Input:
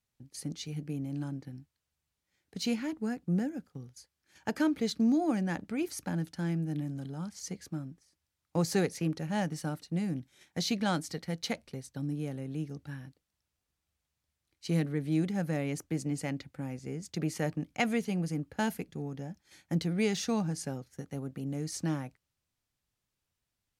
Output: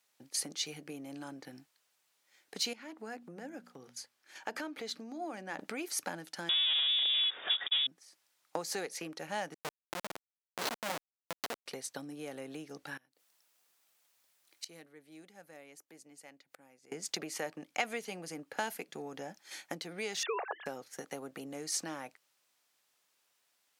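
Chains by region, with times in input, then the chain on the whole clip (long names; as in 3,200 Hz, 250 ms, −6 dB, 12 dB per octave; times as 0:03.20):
0:02.73–0:05.59: high-shelf EQ 4,200 Hz −5.5 dB + mains-hum notches 60/120/180/240 Hz + downward compressor 2.5 to 1, threshold −47 dBFS
0:06.49–0:07.87: leveller curve on the samples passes 5 + voice inversion scrambler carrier 3,600 Hz + multiband upward and downward expander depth 40%
0:09.54–0:11.66: mains-hum notches 50/100/150/200 Hz + comparator with hysteresis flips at −28.5 dBFS
0:12.97–0:16.92: high-shelf EQ 11,000 Hz +9 dB + gate with flip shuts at −37 dBFS, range −26 dB
0:20.23–0:20.66: three sine waves on the formant tracks + Butterworth high-pass 400 Hz 72 dB per octave
whole clip: downward compressor 6 to 1, threshold −41 dBFS; high-pass filter 530 Hz 12 dB per octave; level +11.5 dB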